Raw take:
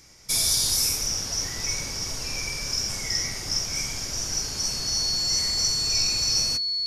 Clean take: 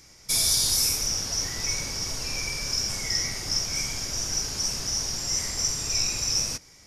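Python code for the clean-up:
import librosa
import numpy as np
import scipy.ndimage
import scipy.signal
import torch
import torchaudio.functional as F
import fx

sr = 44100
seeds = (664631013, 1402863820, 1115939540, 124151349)

y = fx.notch(x, sr, hz=4400.0, q=30.0)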